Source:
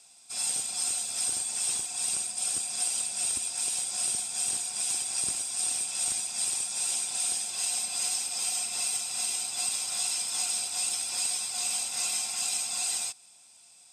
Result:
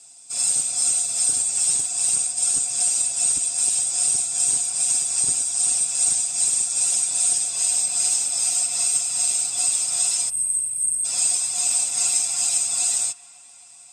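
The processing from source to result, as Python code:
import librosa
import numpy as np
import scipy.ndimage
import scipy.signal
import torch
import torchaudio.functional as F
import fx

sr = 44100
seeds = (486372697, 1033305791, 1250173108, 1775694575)

y = fx.peak_eq(x, sr, hz=7600.0, db=14.0, octaves=0.84)
y = fx.spec_box(y, sr, start_s=10.29, length_s=0.76, low_hz=200.0, high_hz=8100.0, gain_db=-30)
y = fx.tilt_eq(y, sr, slope=-1.5)
y = y + 0.81 * np.pad(y, (int(7.2 * sr / 1000.0), 0))[:len(y)]
y = fx.echo_wet_bandpass(y, sr, ms=266, feedback_pct=76, hz=1400.0, wet_db=-19.0)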